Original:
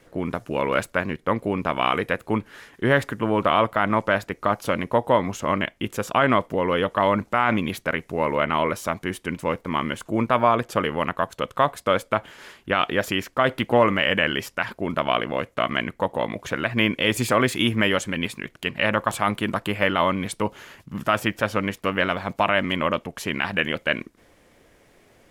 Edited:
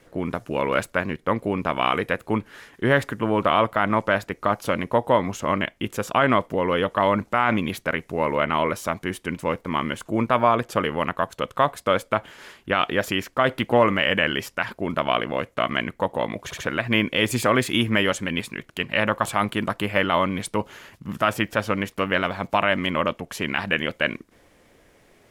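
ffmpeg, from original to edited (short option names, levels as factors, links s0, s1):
-filter_complex "[0:a]asplit=3[s0][s1][s2];[s0]atrim=end=16.512[s3];[s1]atrim=start=16.438:end=16.512[s4];[s2]atrim=start=16.438[s5];[s3][s4]acrossfade=d=0.004:c1=hsin:c2=hsin[s6];[s6][s5]acrossfade=d=0.004:c1=hsin:c2=hsin"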